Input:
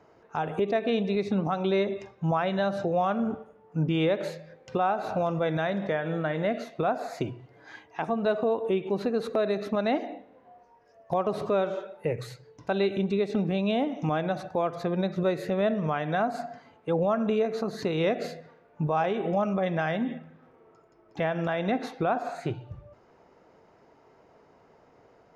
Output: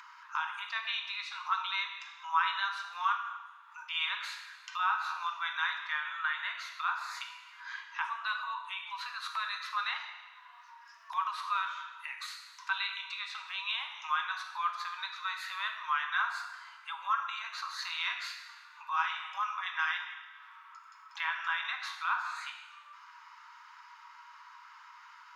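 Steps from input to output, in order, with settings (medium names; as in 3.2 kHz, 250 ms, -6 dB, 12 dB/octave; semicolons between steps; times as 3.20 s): rippled Chebyshev high-pass 960 Hz, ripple 3 dB; treble shelf 5.4 kHz -7 dB; two-slope reverb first 0.82 s, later 2.4 s, from -26 dB, DRR 3 dB; in parallel at -3 dB: upward compressor, threshold -38 dBFS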